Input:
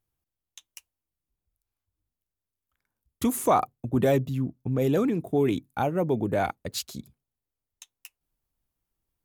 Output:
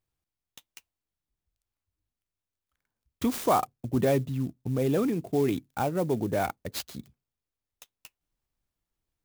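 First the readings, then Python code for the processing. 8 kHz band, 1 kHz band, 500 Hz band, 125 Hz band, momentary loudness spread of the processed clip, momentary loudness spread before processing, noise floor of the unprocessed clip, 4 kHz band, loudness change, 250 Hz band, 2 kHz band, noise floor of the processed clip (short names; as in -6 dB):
-3.5 dB, -2.0 dB, -2.0 dB, -2.0 dB, 11 LU, 10 LU, under -85 dBFS, -2.0 dB, -2.0 dB, -2.0 dB, -2.0 dB, under -85 dBFS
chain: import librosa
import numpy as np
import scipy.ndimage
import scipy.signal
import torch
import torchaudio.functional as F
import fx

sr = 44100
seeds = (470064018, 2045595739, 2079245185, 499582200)

y = fx.clock_jitter(x, sr, seeds[0], jitter_ms=0.029)
y = y * 10.0 ** (-2.0 / 20.0)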